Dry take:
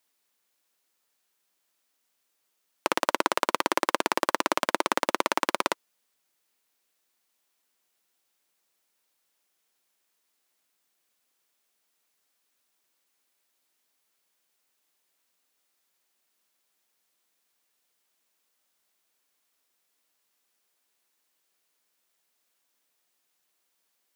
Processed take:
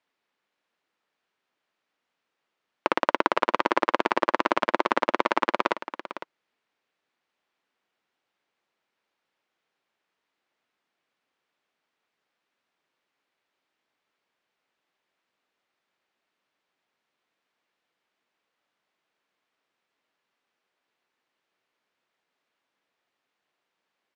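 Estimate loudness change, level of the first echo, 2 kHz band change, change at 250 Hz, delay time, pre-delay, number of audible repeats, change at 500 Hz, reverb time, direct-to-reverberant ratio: +2.0 dB, -12.5 dB, +2.0 dB, +2.5 dB, 506 ms, no reverb, 1, +3.0 dB, no reverb, no reverb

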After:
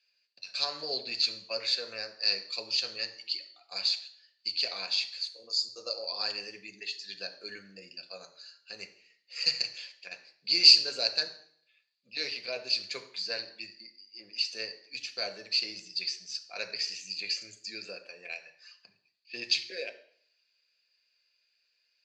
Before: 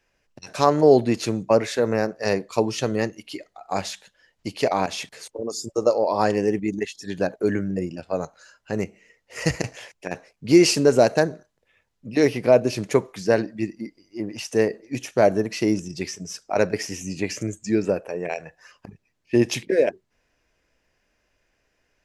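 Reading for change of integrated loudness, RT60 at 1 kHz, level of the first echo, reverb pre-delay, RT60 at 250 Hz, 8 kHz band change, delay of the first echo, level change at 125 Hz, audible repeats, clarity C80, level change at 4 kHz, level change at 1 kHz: -6.5 dB, 0.60 s, no echo, 3 ms, 0.60 s, -9.5 dB, no echo, under -30 dB, no echo, 16.0 dB, +7.5 dB, -21.0 dB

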